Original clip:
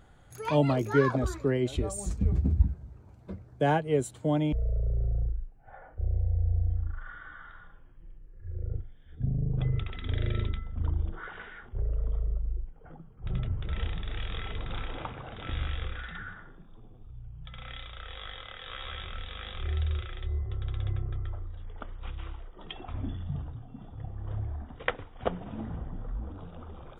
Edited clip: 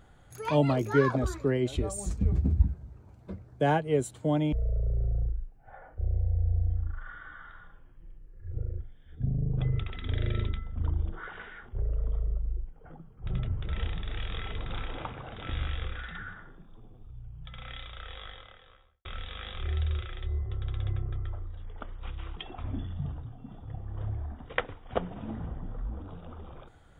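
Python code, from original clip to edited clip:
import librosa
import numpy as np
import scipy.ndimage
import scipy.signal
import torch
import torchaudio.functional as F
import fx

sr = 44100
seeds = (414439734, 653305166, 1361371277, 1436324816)

y = fx.studio_fade_out(x, sr, start_s=18.02, length_s=1.03)
y = fx.edit(y, sr, fx.reverse_span(start_s=8.53, length_s=0.27),
    fx.cut(start_s=22.36, length_s=0.3), tone=tone)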